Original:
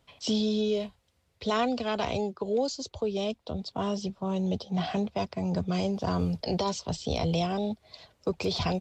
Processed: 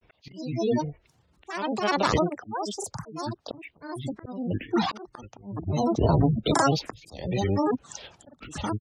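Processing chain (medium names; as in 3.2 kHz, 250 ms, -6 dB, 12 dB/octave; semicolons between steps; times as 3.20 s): spectral gate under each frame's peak -25 dB strong; slow attack 656 ms; granulator, grains 20 per s, spray 36 ms, pitch spread up and down by 12 st; trim +8.5 dB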